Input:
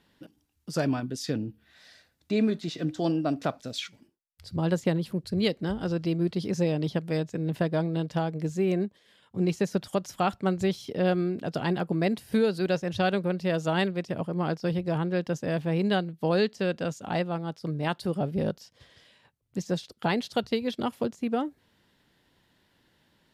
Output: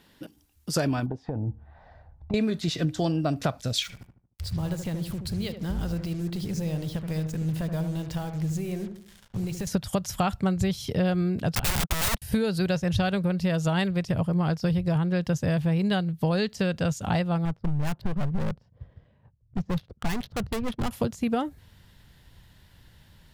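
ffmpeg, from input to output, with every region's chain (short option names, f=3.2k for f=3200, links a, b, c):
-filter_complex "[0:a]asettb=1/sr,asplit=3[a][b][c];[a]atrim=end=1.064[d];[b]atrim=start=1.06:end=2.34,asetpts=PTS-STARTPTS,afade=t=in:d=0.004:c=qsin,afade=t=out:st=1.276:d=0.004:c=qsin,asubboost=boost=8:cutoff=160,acompressor=threshold=-33dB:ratio=12:attack=3.2:release=140:knee=1:detection=peak,lowpass=f=830:t=q:w=4[e];[c]atrim=start=2.336[f];[d][e]acrossfade=d=0.004:c1=hsin:c2=qsin[g];[g][f]acrossfade=d=0.004:c1=qsin:c2=hsin,asettb=1/sr,asplit=3[h][i][j];[h]atrim=end=3.824[k];[i]atrim=start=3.82:end=9.67,asetpts=PTS-STARTPTS,afade=t=in:d=0.004:c=qsin,afade=t=out:st=5.846:d=0.004:c=qsin,acompressor=threshold=-40dB:ratio=3:attack=3.2:release=140:knee=1:detection=peak,acrusher=bits=8:mix=0:aa=0.5,asplit=2[l][m];[m]adelay=76,lowpass=f=1.2k:p=1,volume=-6.5dB,asplit=2[n][o];[o]adelay=76,lowpass=f=1.2k:p=1,volume=0.44,asplit=2[p][q];[q]adelay=76,lowpass=f=1.2k:p=1,volume=0.44,asplit=2[r][s];[s]adelay=76,lowpass=f=1.2k:p=1,volume=0.44,asplit=2[t][u];[u]adelay=76,lowpass=f=1.2k:p=1,volume=0.44[v];[l][n][p][r][t][v]amix=inputs=6:normalize=0,atrim=end_sample=257985[w];[j]atrim=start=9.666[x];[k][w]acrossfade=d=0.004:c1=hsin:c2=qsin[y];[y][x]acrossfade=d=0.004:c1=qsin:c2=hsin,asettb=1/sr,asplit=3[z][aa][ab];[z]atrim=end=11.554[ac];[aa]atrim=start=11.55:end=12.22,asetpts=PTS-STARTPTS,afade=t=in:d=0.004:c=qsin,afade=t=out:st=0.666:d=0.004:c=qsin,agate=range=-55dB:threshold=-32dB:ratio=16:release=100:detection=peak,aeval=exprs='(mod(25.1*val(0)+1,2)-1)/25.1':c=same[ad];[ab]atrim=start=12.216[ae];[ac][ad]acrossfade=d=0.004:c1=hsin:c2=qsin[af];[af][ae]acrossfade=d=0.004:c1=qsin:c2=hsin,asettb=1/sr,asplit=3[ag][ah][ai];[ag]atrim=end=17.454[aj];[ah]atrim=start=17.45:end=20.91,asetpts=PTS-STARTPTS,afade=t=in:d=0.004:c=qsin,afade=t=out:st=3.456:d=0.004:c=qsin,lowshelf=f=61:g=-9,adynamicsmooth=sensitivity=6:basefreq=580,asoftclip=type=hard:threshold=-31.5dB[ak];[ai]atrim=start=20.906[al];[aj][ak]acrossfade=d=0.004:c1=hsin:c2=qsin[am];[am][al]acrossfade=d=0.004:c1=qsin:c2=hsin,asubboost=boost=9:cutoff=98,acompressor=threshold=-28dB:ratio=6,highshelf=f=7.7k:g=7,volume=6.5dB"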